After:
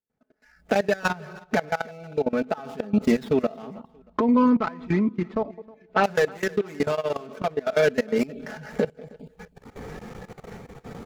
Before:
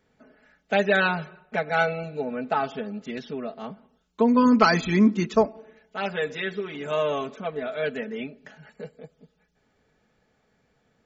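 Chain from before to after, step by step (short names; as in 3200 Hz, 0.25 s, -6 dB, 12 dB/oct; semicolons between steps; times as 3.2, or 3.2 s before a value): median filter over 15 samples; recorder AGC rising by 33 dB/s; spectral noise reduction 16 dB; 3.7–6.04 LPF 3100 Hz 12 dB/oct; level quantiser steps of 20 dB; random-step tremolo; feedback echo 0.315 s, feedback 34%, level -23.5 dB; gain +3 dB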